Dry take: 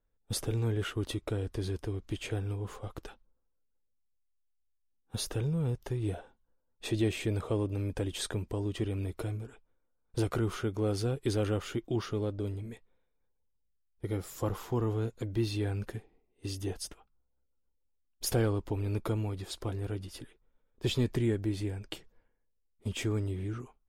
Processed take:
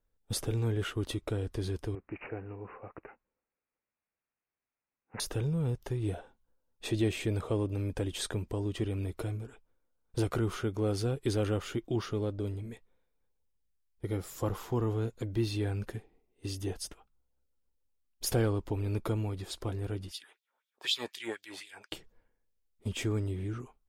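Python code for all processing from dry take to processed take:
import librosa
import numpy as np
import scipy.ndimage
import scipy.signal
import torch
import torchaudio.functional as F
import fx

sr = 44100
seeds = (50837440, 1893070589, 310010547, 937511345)

y = fx.chain(x, sr, fx.highpass(hz=340.0, slope=6),
    fx.peak_eq(hz=2300.0, db=-13.0, octaves=0.46),
    fx.resample_bad(factor=8, down='none', up='filtered'), at=(1.95, 5.2))
y = fx.chain(y, sr, fx.low_shelf(hz=410.0, db=9.5),
    fx.filter_lfo_highpass(shape='sine', hz=4.0, low_hz=750.0, high_hz=3900.0, q=2.8), at=(20.11, 21.92))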